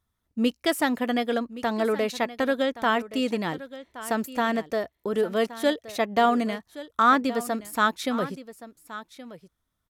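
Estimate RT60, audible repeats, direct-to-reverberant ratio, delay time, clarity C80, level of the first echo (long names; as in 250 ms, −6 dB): no reverb audible, 1, no reverb audible, 1,122 ms, no reverb audible, −15.5 dB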